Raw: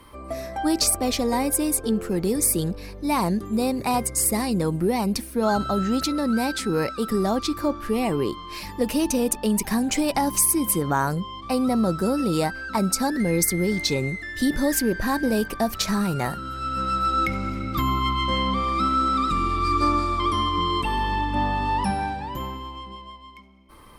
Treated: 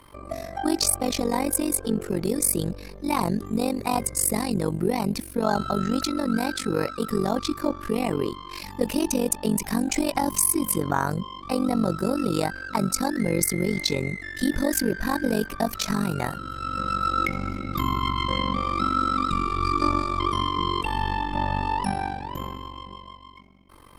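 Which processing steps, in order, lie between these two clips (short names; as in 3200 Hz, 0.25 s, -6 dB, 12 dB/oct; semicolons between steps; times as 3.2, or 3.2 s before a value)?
AM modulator 47 Hz, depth 85%; gain +2 dB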